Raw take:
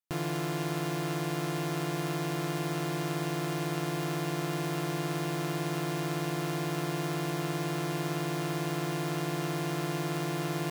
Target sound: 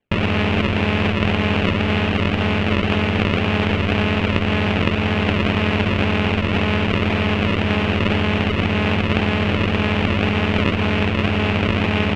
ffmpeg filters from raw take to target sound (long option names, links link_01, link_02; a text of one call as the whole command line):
ffmpeg -i in.wav -filter_complex "[0:a]acrossover=split=160[link_01][link_02];[link_01]alimiter=level_in=15dB:limit=-24dB:level=0:latency=1:release=209,volume=-15dB[link_03];[link_03][link_02]amix=inputs=2:normalize=0,asetrate=38808,aresample=44100,acrusher=samples=22:mix=1:aa=0.000001:lfo=1:lforange=35.2:lforate=1.9,acontrast=89,asetrate=30296,aresample=44100,atempo=1.45565,lowpass=frequency=2700:width_type=q:width=3.7,volume=7dB" out.wav